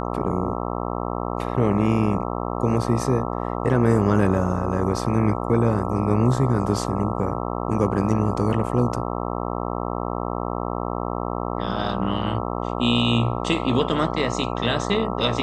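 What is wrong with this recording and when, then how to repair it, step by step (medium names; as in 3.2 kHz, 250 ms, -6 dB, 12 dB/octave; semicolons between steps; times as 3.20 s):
buzz 60 Hz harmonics 22 -27 dBFS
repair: de-hum 60 Hz, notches 22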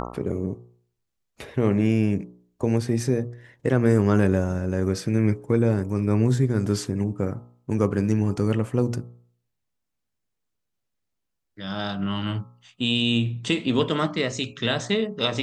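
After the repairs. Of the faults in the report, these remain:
nothing left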